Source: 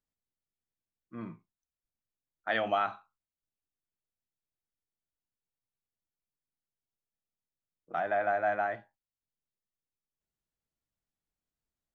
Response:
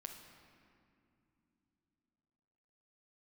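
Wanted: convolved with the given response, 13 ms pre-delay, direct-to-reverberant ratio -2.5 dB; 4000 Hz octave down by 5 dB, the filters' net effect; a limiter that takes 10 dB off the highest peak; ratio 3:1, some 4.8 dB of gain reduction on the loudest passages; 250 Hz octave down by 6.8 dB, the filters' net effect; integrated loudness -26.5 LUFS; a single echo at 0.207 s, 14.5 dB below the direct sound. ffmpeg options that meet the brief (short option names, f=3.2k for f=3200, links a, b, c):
-filter_complex "[0:a]equalizer=f=250:t=o:g=-9,equalizer=f=4k:t=o:g=-7,acompressor=threshold=-32dB:ratio=3,alimiter=level_in=8.5dB:limit=-24dB:level=0:latency=1,volume=-8.5dB,aecho=1:1:207:0.188,asplit=2[a][b];[1:a]atrim=start_sample=2205,adelay=13[c];[b][c]afir=irnorm=-1:irlink=0,volume=6.5dB[d];[a][d]amix=inputs=2:normalize=0,volume=13.5dB"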